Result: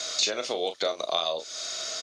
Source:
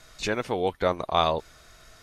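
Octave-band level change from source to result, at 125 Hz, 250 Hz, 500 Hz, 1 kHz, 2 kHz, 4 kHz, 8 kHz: below −20 dB, −9.5 dB, −3.0 dB, −7.5 dB, −3.0 dB, +7.0 dB, can't be measured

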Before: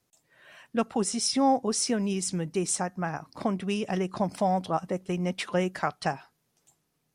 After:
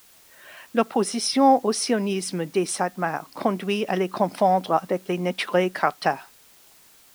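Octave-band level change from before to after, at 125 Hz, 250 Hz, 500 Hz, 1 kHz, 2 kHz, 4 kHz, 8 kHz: +0.5, +3.5, +7.0, +7.0, +7.0, +4.0, −0.5 decibels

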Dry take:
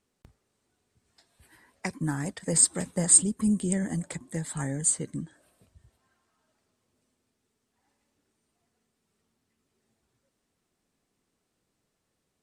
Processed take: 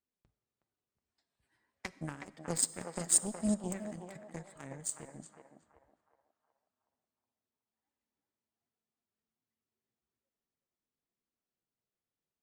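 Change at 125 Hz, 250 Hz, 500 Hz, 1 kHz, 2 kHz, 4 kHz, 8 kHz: −13.0, −9.5, −7.0, −5.5, −9.0, −7.0, −10.0 decibels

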